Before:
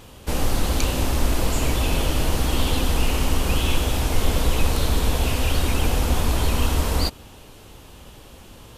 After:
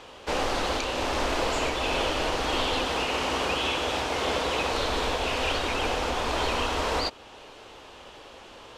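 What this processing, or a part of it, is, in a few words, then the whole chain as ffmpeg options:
DJ mixer with the lows and highs turned down: -filter_complex "[0:a]asettb=1/sr,asplit=3[a][b][c];[a]atrim=end=2.854[d];[b]atrim=start=2.85:end=4.73,asetpts=PTS-STARTPTS,afade=t=in:d=0.004:c=qsin,afade=t=out:st=1.876:d=0.004:c=qsin,highpass=64[e];[c]atrim=start=4.726[f];[d][e]acrossfade=d=0.004:c1=hsin:c2=qsin[g];[g][f]acrossfade=d=0.004:c1=qsin:c2=hsin,acrossover=split=360 7400:gain=0.126 1 0.112[h][i][j];[h][i][j]amix=inputs=3:normalize=0,alimiter=limit=-19dB:level=0:latency=1:release=378,highshelf=f=5.1k:g=-8,volume=4dB"

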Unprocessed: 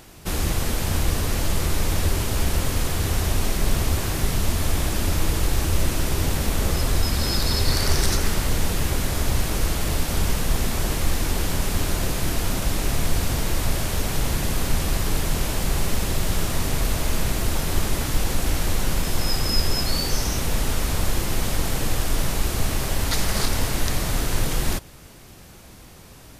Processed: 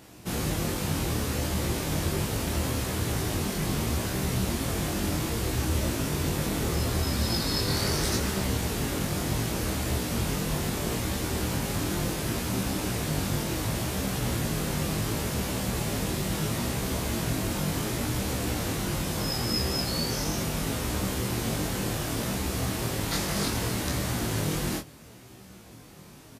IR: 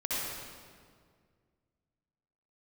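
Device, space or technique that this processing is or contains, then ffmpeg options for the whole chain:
double-tracked vocal: -filter_complex "[0:a]highpass=69,asplit=2[a][b];[b]adelay=26,volume=-4dB[c];[a][c]amix=inputs=2:normalize=0,flanger=delay=15.5:depth=4.8:speed=0.71,equalizer=f=230:t=o:w=2.1:g=5,volume=-3dB"

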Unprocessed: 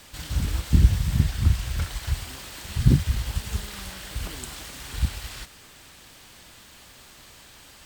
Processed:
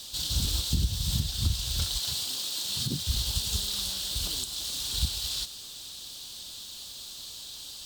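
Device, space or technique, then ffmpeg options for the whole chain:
over-bright horn tweeter: -filter_complex "[0:a]highshelf=f=2.8k:t=q:w=3:g=10.5,alimiter=limit=-11dB:level=0:latency=1:release=287,asettb=1/sr,asplit=3[a][b][c];[a]atrim=end=2.014[d];[b]atrim=start=2.01:end=3.07,asetpts=PTS-STARTPTS,afade=t=in:d=0.004:c=qsin,afade=t=out:st=1.056:d=0.004:c=qsin,highpass=170[e];[c]atrim=start=3.066[f];[d][e]acrossfade=d=0.004:c1=hsin:c2=qsin[g];[g][f]acrossfade=d=0.004:c1=qsin:c2=hsin,volume=-4.5dB"

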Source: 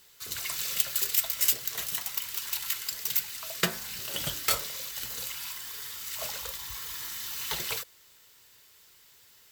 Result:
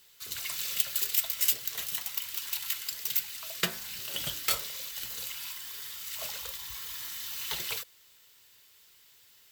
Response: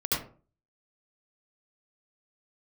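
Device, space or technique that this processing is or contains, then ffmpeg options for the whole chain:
presence and air boost: -af "equalizer=f=3.1k:t=o:w=1.3:g=4.5,highshelf=f=9.7k:g=4.5,volume=-5dB"

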